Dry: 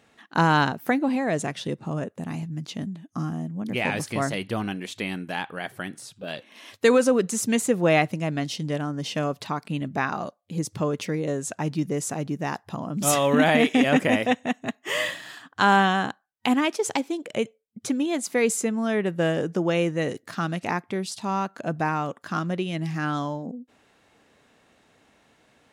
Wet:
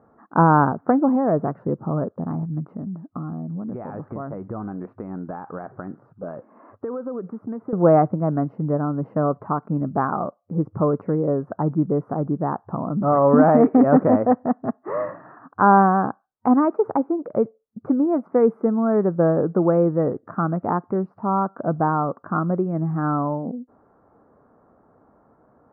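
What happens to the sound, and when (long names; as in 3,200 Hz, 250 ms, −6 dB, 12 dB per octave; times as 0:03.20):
0:02.75–0:07.73: downward compressor 10 to 1, threshold −31 dBFS
whole clip: elliptic low-pass filter 1,300 Hz, stop band 60 dB; level +6 dB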